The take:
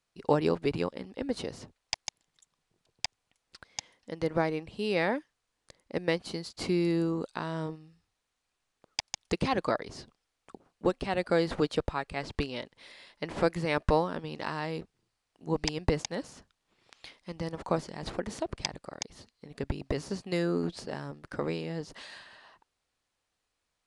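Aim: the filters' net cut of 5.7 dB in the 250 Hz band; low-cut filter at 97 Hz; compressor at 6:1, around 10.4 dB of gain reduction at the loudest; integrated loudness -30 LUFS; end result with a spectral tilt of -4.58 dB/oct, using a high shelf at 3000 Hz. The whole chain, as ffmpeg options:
-af "highpass=97,equalizer=f=250:t=o:g=-9,highshelf=f=3k:g=-4,acompressor=threshold=-33dB:ratio=6,volume=10.5dB"

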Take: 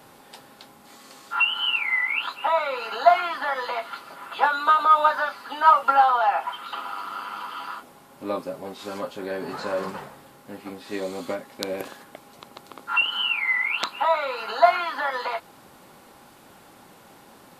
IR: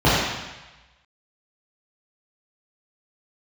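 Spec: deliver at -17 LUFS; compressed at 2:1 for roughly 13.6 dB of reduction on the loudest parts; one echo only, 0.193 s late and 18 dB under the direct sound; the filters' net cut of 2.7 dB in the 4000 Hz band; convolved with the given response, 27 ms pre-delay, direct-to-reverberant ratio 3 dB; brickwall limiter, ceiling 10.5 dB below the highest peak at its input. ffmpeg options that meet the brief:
-filter_complex "[0:a]equalizer=f=4k:t=o:g=-4.5,acompressor=threshold=-36dB:ratio=2,alimiter=level_in=0.5dB:limit=-24dB:level=0:latency=1,volume=-0.5dB,aecho=1:1:193:0.126,asplit=2[a][b];[1:a]atrim=start_sample=2205,adelay=27[c];[b][c]afir=irnorm=-1:irlink=0,volume=-27.5dB[d];[a][d]amix=inputs=2:normalize=0,volume=16dB"

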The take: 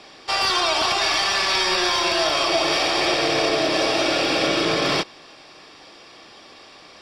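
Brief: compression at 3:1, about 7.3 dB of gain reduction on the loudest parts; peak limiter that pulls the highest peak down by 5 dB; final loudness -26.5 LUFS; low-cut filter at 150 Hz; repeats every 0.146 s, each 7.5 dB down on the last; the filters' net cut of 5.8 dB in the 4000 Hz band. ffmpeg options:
-af "highpass=150,equalizer=f=4k:t=o:g=-7.5,acompressor=threshold=-28dB:ratio=3,alimiter=limit=-21.5dB:level=0:latency=1,aecho=1:1:146|292|438|584|730:0.422|0.177|0.0744|0.0312|0.0131,volume=3dB"

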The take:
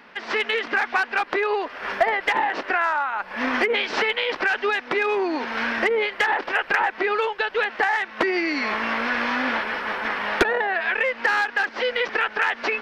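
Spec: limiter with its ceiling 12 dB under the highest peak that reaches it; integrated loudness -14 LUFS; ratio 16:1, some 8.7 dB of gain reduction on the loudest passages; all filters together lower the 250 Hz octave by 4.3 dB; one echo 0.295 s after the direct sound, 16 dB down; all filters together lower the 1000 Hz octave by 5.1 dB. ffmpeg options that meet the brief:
-af "equalizer=f=250:t=o:g=-5.5,equalizer=f=1k:t=o:g=-6.5,acompressor=threshold=-26dB:ratio=16,alimiter=level_in=1dB:limit=-24dB:level=0:latency=1,volume=-1dB,aecho=1:1:295:0.158,volume=19dB"

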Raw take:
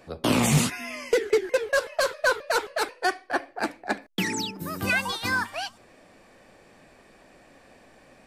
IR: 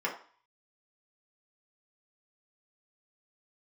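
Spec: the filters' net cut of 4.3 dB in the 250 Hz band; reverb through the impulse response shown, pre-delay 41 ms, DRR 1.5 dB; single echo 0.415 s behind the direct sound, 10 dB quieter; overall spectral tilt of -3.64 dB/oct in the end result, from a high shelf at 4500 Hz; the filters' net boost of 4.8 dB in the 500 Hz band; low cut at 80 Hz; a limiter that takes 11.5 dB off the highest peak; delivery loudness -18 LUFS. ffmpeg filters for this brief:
-filter_complex "[0:a]highpass=80,equalizer=f=250:t=o:g=-8,equalizer=f=500:t=o:g=7.5,highshelf=f=4.5k:g=-4,alimiter=limit=-18dB:level=0:latency=1,aecho=1:1:415:0.316,asplit=2[a][b];[1:a]atrim=start_sample=2205,adelay=41[c];[b][c]afir=irnorm=-1:irlink=0,volume=-9dB[d];[a][d]amix=inputs=2:normalize=0,volume=9dB"

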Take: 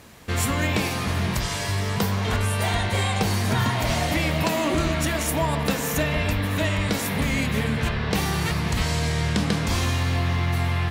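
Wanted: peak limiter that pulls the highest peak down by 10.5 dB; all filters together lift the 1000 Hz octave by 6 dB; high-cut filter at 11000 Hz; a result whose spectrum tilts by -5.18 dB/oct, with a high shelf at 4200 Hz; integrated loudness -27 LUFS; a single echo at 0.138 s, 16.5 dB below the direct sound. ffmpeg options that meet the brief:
-af "lowpass=11k,equalizer=f=1k:t=o:g=7.5,highshelf=f=4.2k:g=-3.5,alimiter=limit=-17dB:level=0:latency=1,aecho=1:1:138:0.15,volume=-1dB"

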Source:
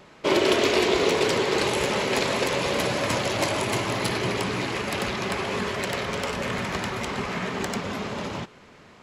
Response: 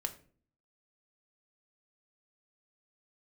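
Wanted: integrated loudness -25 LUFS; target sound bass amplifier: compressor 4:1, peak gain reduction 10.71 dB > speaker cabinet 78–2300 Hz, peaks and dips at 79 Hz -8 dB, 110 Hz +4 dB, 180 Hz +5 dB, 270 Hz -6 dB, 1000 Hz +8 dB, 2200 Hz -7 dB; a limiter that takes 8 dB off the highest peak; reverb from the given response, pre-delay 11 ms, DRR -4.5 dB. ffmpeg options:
-filter_complex "[0:a]alimiter=limit=-15dB:level=0:latency=1,asplit=2[a][b];[1:a]atrim=start_sample=2205,adelay=11[c];[b][c]afir=irnorm=-1:irlink=0,volume=4dB[d];[a][d]amix=inputs=2:normalize=0,acompressor=threshold=-26dB:ratio=4,highpass=f=78:w=0.5412,highpass=f=78:w=1.3066,equalizer=f=79:t=q:w=4:g=-8,equalizer=f=110:t=q:w=4:g=4,equalizer=f=180:t=q:w=4:g=5,equalizer=f=270:t=q:w=4:g=-6,equalizer=f=1k:t=q:w=4:g=8,equalizer=f=2.2k:t=q:w=4:g=-7,lowpass=f=2.3k:w=0.5412,lowpass=f=2.3k:w=1.3066,volume=3dB"

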